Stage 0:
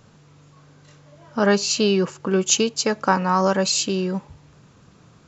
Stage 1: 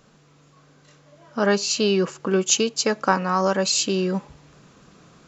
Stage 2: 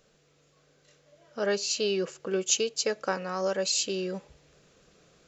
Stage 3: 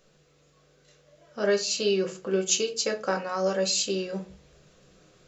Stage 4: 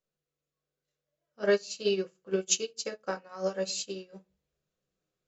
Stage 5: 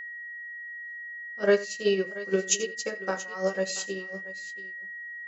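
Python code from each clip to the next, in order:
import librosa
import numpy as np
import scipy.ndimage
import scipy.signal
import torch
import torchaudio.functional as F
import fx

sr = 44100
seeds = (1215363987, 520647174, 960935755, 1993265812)

y1 = fx.rider(x, sr, range_db=10, speed_s=0.5)
y1 = fx.peak_eq(y1, sr, hz=95.0, db=-13.5, octaves=0.85)
y1 = fx.notch(y1, sr, hz=900.0, q=15.0)
y2 = fx.graphic_eq(y1, sr, hz=(125, 250, 500, 1000), db=(-6, -9, 5, -10))
y2 = y2 * 10.0 ** (-5.5 / 20.0)
y3 = fx.room_shoebox(y2, sr, seeds[0], volume_m3=130.0, walls='furnished', distance_m=1.0)
y4 = fx.upward_expand(y3, sr, threshold_db=-39.0, expansion=2.5)
y5 = y4 + 10.0 ** (-40.0 / 20.0) * np.sin(2.0 * np.pi * 1900.0 * np.arange(len(y4)) / sr)
y5 = fx.echo_multitap(y5, sr, ms=(86, 682), db=(-18.0, -17.5))
y5 = fx.dynamic_eq(y5, sr, hz=4200.0, q=1.6, threshold_db=-47.0, ratio=4.0, max_db=-5)
y5 = y5 * 10.0 ** (3.5 / 20.0)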